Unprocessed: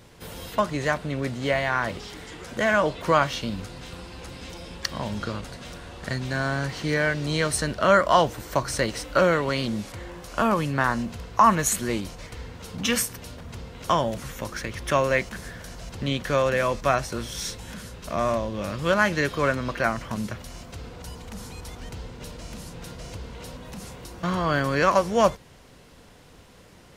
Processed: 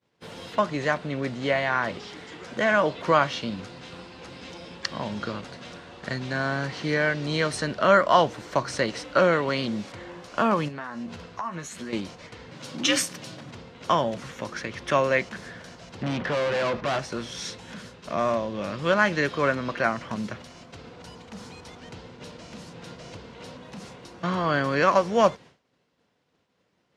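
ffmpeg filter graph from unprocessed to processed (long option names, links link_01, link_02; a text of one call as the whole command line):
ffmpeg -i in.wav -filter_complex "[0:a]asettb=1/sr,asplit=3[link_01][link_02][link_03];[link_01]atrim=end=10.684[link_04];[link_02]atrim=start=10.68:end=11.93,asetpts=PTS-STARTPTS,afade=type=in:duration=0.004:curve=qsin,afade=type=out:start_time=1.246:duration=0.004:curve=qsin,acompressor=threshold=-32dB:ratio=5:attack=3.2:release=140:knee=1:detection=peak,asplit=2[link_05][link_06];[link_06]adelay=12,volume=-6dB[link_07];[link_05][link_07]amix=inputs=2:normalize=0,atrim=end_sample=55125[link_08];[link_03]atrim=start=11.926[link_09];[link_04][link_08]acrossfade=duration=0.004:curve1=hsin:curve2=qsin[link_10];[link_10][link_09]acrossfade=duration=0.004:curve1=qsin:curve2=hsin,asettb=1/sr,asplit=3[link_11][link_12][link_13];[link_11]atrim=end=12.514[link_14];[link_12]atrim=start=12.51:end=13.51,asetpts=PTS-STARTPTS,afade=type=in:duration=0.004:curve=qsin,afade=type=out:start_time=0.996:duration=0.004:curve=qsin,highshelf=frequency=3200:gain=8,afreqshift=59[link_15];[link_13]atrim=start=13.506[link_16];[link_14][link_15]acrossfade=duration=0.004:curve1=hsin:curve2=qsin[link_17];[link_17][link_16]acrossfade=duration=0.004:curve1=qsin:curve2=hsin,asettb=1/sr,asplit=3[link_18][link_19][link_20];[link_18]atrim=end=16.034[link_21];[link_19]atrim=start=16.03:end=16.99,asetpts=PTS-STARTPTS,afade=type=in:duration=0.004:curve=qsin,afade=type=out:start_time=0.956:duration=0.004:curve=qsin,lowpass=2400,acontrast=83,volume=23.5dB,asoftclip=hard,volume=-23.5dB[link_22];[link_20]atrim=start=16.986[link_23];[link_21][link_22]acrossfade=duration=0.004:curve1=hsin:curve2=qsin[link_24];[link_24][link_23]acrossfade=duration=0.004:curve1=qsin:curve2=hsin,highpass=140,agate=range=-33dB:threshold=-40dB:ratio=3:detection=peak,lowpass=5500" out.wav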